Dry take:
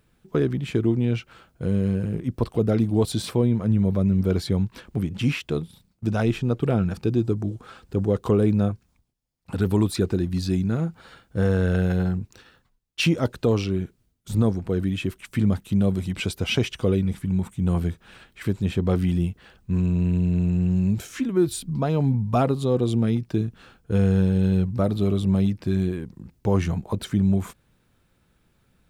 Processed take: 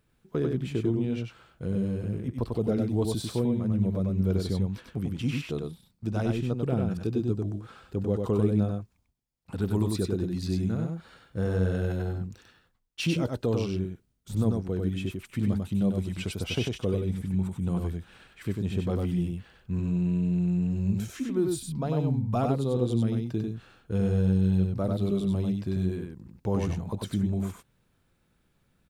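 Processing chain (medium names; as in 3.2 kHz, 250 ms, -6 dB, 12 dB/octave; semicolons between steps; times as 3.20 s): dynamic bell 1.9 kHz, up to -4 dB, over -41 dBFS, Q 1; on a send: delay 96 ms -3.5 dB; on the sum: trim -6.5 dB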